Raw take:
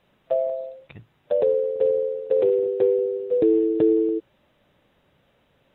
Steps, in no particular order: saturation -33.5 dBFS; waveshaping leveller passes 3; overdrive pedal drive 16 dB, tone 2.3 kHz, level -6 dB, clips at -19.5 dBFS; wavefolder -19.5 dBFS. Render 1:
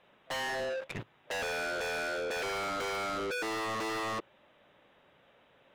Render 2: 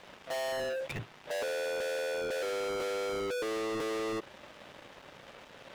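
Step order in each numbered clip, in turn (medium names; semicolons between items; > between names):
waveshaping leveller > wavefolder > overdrive pedal > saturation; overdrive pedal > wavefolder > waveshaping leveller > saturation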